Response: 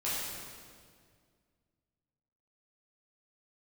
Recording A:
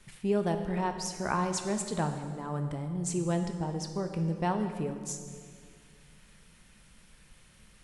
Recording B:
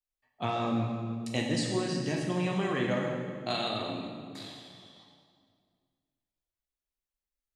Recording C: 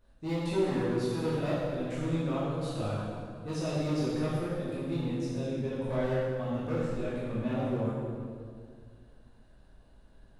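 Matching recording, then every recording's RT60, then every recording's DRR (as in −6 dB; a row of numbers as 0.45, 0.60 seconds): C; 2.0, 2.0, 2.0 seconds; 5.5, −1.5, −10.0 decibels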